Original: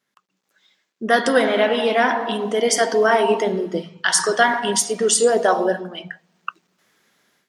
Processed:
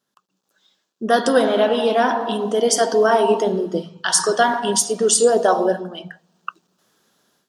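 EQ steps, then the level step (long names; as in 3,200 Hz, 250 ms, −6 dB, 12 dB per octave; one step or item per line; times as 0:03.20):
parametric band 2,100 Hz −14.5 dB 0.51 octaves
+1.5 dB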